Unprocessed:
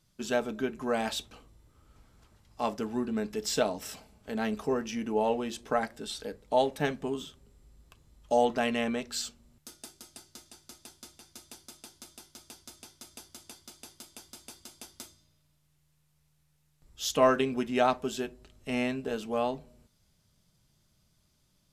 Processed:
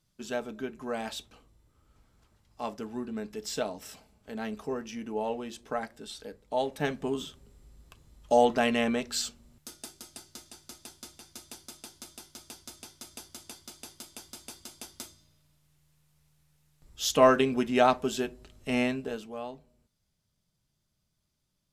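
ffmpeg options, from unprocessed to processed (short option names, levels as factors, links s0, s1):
-af "volume=1.41,afade=t=in:st=6.56:d=0.68:silence=0.421697,afade=t=out:st=18.81:d=0.52:silence=0.251189"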